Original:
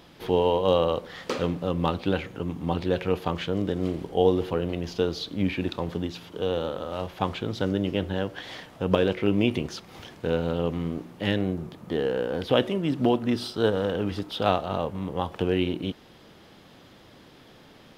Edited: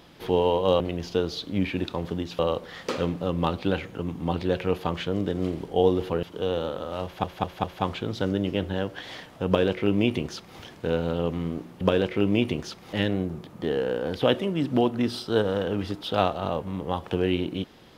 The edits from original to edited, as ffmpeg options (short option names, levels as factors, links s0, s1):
-filter_complex "[0:a]asplit=9[s0][s1][s2][s3][s4][s5][s6][s7][s8];[s0]atrim=end=0.802[s9];[s1]atrim=start=4.638:end=6.232[s10];[s2]atrim=start=0.798:end=4.642[s11];[s3]atrim=start=6.228:end=7.242[s12];[s4]atrim=start=7.038:end=7.242[s13];[s5]atrim=start=7.038:end=7.242[s14];[s6]atrim=start=7.038:end=11.212[s15];[s7]atrim=start=8.868:end=9.992[s16];[s8]atrim=start=11.208[s17];[s9][s10]acrossfade=d=0.004:c1=hsin:c2=hsin[s18];[s18][s11]acrossfade=d=0.004:c1=hsin:c2=hsin[s19];[s19][s12]acrossfade=d=0.004:c1=hsin:c2=hsin[s20];[s20][s13]acrossfade=d=0.004:c1=hsin:c2=hsin[s21];[s21][s14]acrossfade=d=0.004:c1=hsin:c2=hsin[s22];[s22][s15]acrossfade=d=0.004:c1=hsin:c2=hsin[s23];[s23][s16]acrossfade=d=0.004:c1=hsin:c2=hsin[s24];[s24][s17]acrossfade=d=0.004:c1=hsin:c2=hsin"